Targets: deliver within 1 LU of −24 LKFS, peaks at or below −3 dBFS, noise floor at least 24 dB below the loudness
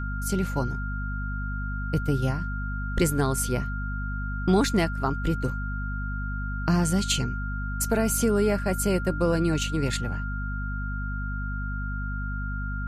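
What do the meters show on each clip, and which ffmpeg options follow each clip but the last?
mains hum 50 Hz; hum harmonics up to 250 Hz; level of the hum −28 dBFS; interfering tone 1,400 Hz; level of the tone −35 dBFS; integrated loudness −27.5 LKFS; sample peak −9.5 dBFS; target loudness −24.0 LKFS
→ -af "bandreject=frequency=50:width_type=h:width=6,bandreject=frequency=100:width_type=h:width=6,bandreject=frequency=150:width_type=h:width=6,bandreject=frequency=200:width_type=h:width=6,bandreject=frequency=250:width_type=h:width=6"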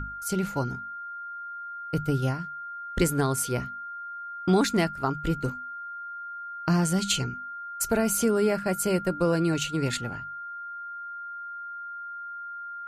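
mains hum none found; interfering tone 1,400 Hz; level of the tone −35 dBFS
→ -af "bandreject=frequency=1400:width=30"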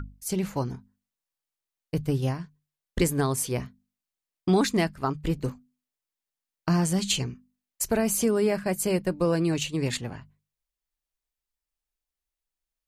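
interfering tone none found; integrated loudness −27.0 LKFS; sample peak −11.0 dBFS; target loudness −24.0 LKFS
→ -af "volume=3dB"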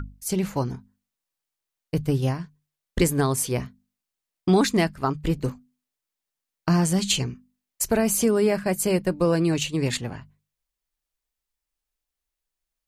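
integrated loudness −24.0 LKFS; sample peak −8.0 dBFS; background noise floor −86 dBFS

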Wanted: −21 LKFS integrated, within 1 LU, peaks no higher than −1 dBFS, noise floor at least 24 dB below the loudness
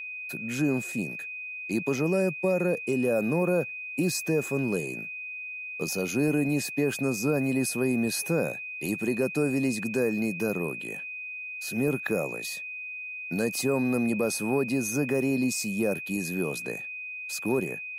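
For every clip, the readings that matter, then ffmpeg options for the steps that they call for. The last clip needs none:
interfering tone 2,500 Hz; level of the tone −35 dBFS; integrated loudness −28.5 LKFS; sample peak −15.0 dBFS; target loudness −21.0 LKFS
→ -af "bandreject=frequency=2500:width=30"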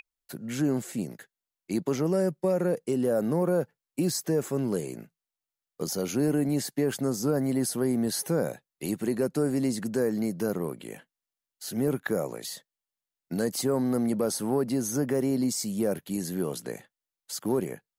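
interfering tone none found; integrated loudness −28.5 LKFS; sample peak −16.0 dBFS; target loudness −21.0 LKFS
→ -af "volume=7.5dB"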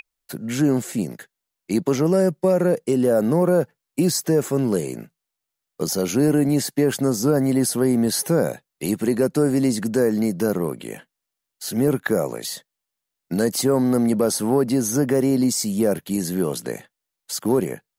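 integrated loudness −21.0 LKFS; sample peak −8.5 dBFS; background noise floor −83 dBFS

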